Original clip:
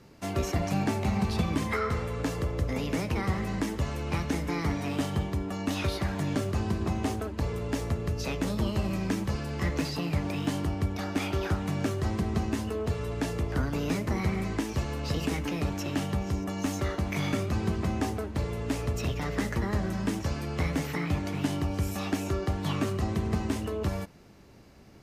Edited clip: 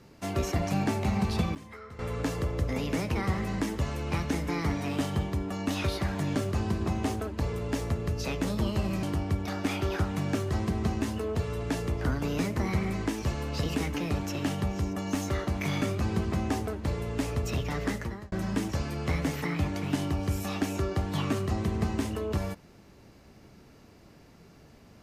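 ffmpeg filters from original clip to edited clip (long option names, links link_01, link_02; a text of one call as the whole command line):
ffmpeg -i in.wav -filter_complex "[0:a]asplit=5[link_01][link_02][link_03][link_04][link_05];[link_01]atrim=end=1.55,asetpts=PTS-STARTPTS,afade=type=out:start_time=1.41:duration=0.14:curve=log:silence=0.149624[link_06];[link_02]atrim=start=1.55:end=1.99,asetpts=PTS-STARTPTS,volume=-16.5dB[link_07];[link_03]atrim=start=1.99:end=9.032,asetpts=PTS-STARTPTS,afade=type=in:duration=0.14:curve=log:silence=0.149624[link_08];[link_04]atrim=start=10.538:end=19.83,asetpts=PTS-STARTPTS,afade=type=out:start_time=8.822:duration=0.47[link_09];[link_05]atrim=start=19.83,asetpts=PTS-STARTPTS,afade=type=in:duration=0.004:curve=hsin[link_10];[link_06][link_07][link_08]concat=n=3:v=0:a=1[link_11];[link_09][link_10]concat=n=2:v=0:a=1[link_12];[link_11][link_12]acrossfade=duration=0.004:curve1=hsin:curve2=hsin" out.wav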